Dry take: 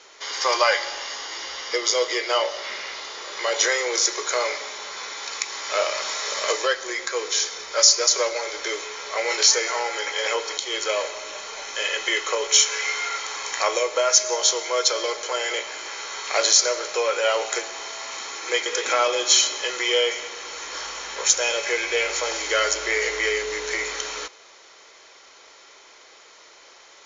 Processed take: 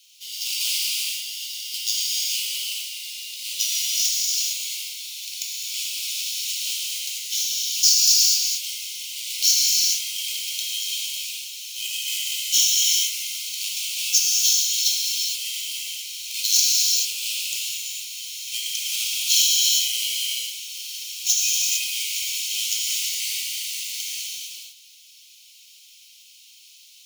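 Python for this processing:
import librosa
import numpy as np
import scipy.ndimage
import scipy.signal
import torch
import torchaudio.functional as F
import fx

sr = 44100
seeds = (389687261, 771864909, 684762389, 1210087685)

y = fx.halfwave_hold(x, sr)
y = scipy.signal.sosfilt(scipy.signal.ellip(4, 1.0, 40, 2700.0, 'highpass', fs=sr, output='sos'), y)
y = fx.rev_gated(y, sr, seeds[0], gate_ms=480, shape='flat', drr_db=-5.5)
y = y * 10.0 ** (-6.0 / 20.0)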